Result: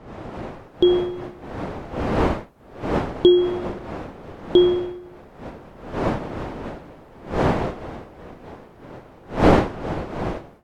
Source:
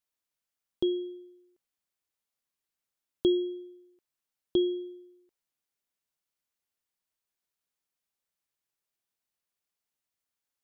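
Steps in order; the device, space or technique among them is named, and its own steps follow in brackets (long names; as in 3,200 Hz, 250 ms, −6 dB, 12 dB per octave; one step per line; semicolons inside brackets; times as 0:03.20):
smartphone video outdoors (wind on the microphone 600 Hz −38 dBFS; automatic gain control gain up to 12.5 dB; AAC 64 kbit/s 48,000 Hz)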